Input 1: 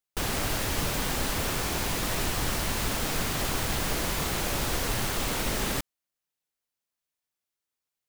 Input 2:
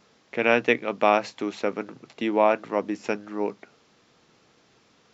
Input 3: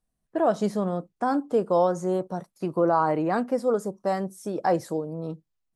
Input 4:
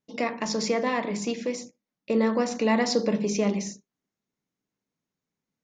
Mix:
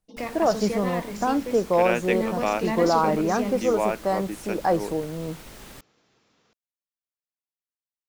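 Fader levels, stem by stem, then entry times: -15.0 dB, -5.5 dB, +1.0 dB, -5.0 dB; 0.00 s, 1.40 s, 0.00 s, 0.00 s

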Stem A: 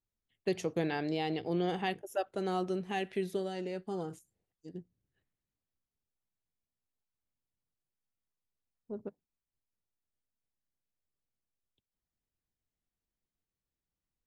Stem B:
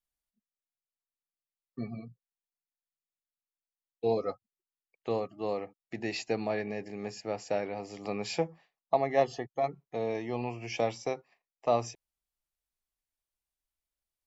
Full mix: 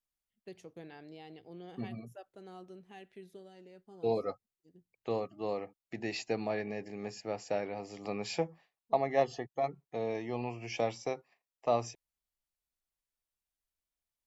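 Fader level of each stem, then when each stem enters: -16.5 dB, -2.5 dB; 0.00 s, 0.00 s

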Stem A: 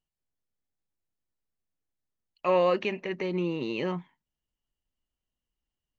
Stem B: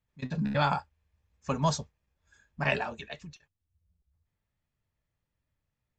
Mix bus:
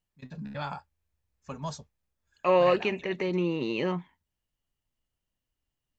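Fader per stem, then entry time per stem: +1.5 dB, -9.0 dB; 0.00 s, 0.00 s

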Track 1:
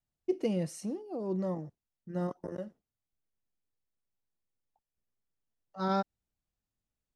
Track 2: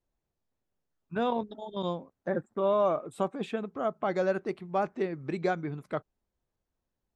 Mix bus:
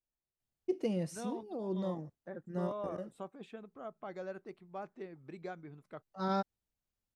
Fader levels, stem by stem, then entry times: -3.0 dB, -15.0 dB; 0.40 s, 0.00 s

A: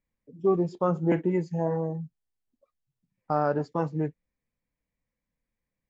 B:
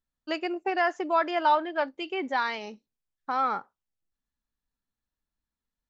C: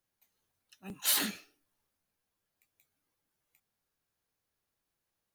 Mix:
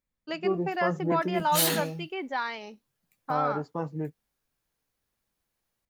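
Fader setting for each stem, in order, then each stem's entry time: -4.5 dB, -3.5 dB, +3.0 dB; 0.00 s, 0.00 s, 0.50 s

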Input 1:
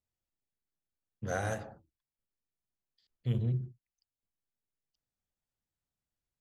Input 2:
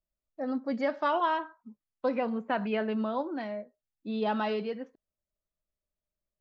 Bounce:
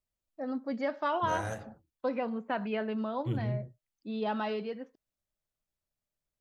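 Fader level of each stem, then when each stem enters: -2.5 dB, -3.0 dB; 0.00 s, 0.00 s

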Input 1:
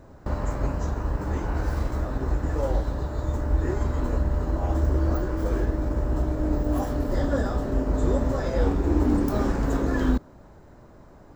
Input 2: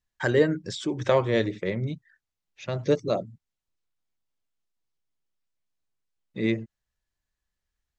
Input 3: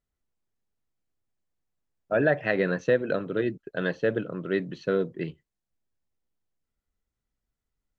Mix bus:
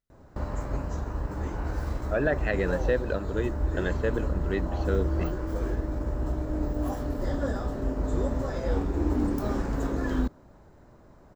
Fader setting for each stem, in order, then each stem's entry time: -4.5 dB, mute, -3.5 dB; 0.10 s, mute, 0.00 s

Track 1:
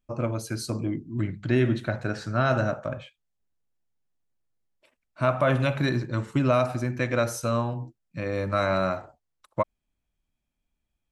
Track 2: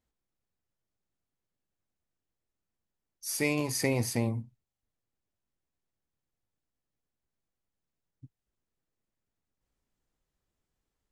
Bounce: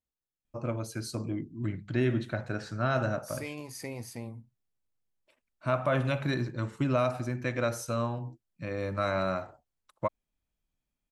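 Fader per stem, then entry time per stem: -5.0 dB, -11.0 dB; 0.45 s, 0.00 s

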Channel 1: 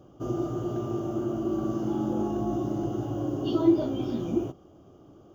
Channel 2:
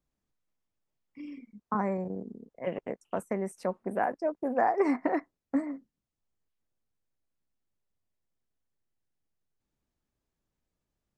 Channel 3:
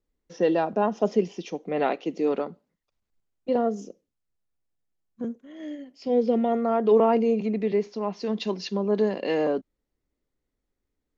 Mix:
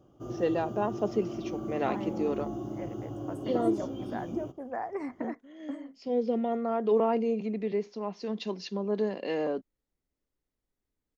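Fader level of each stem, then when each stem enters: -7.5 dB, -9.5 dB, -6.0 dB; 0.00 s, 0.15 s, 0.00 s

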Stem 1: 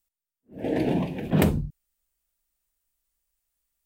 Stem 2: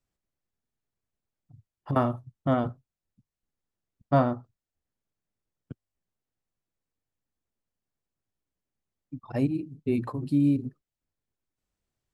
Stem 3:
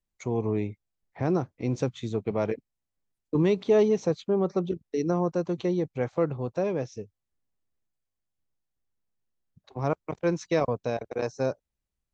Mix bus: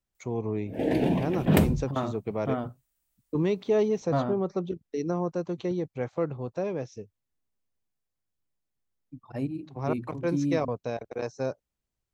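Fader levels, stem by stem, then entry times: 0.0 dB, -5.5 dB, -3.0 dB; 0.15 s, 0.00 s, 0.00 s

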